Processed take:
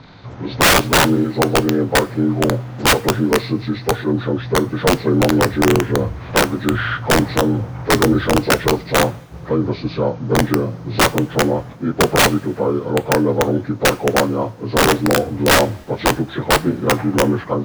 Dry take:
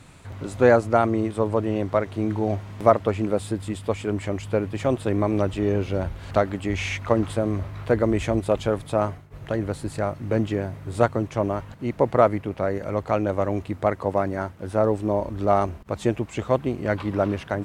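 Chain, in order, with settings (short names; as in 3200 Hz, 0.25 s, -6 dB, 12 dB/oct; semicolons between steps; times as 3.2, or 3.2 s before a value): inharmonic rescaling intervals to 79%; wrapped overs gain 15 dB; two-slope reverb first 0.33 s, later 2 s, from -19 dB, DRR 14.5 dB; gain +9 dB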